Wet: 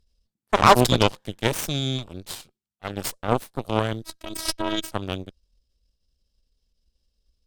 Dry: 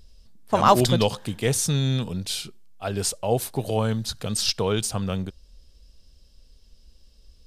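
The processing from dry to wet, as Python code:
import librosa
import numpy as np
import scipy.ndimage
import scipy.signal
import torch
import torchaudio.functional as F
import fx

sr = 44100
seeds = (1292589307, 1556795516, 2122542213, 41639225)

y = fx.cheby_harmonics(x, sr, harmonics=(4, 7, 8), levels_db=(-23, -18, -22), full_scale_db=-3.0)
y = fx.robotise(y, sr, hz=322.0, at=(4.02, 4.92))
y = F.gain(torch.from_numpy(y), 2.0).numpy()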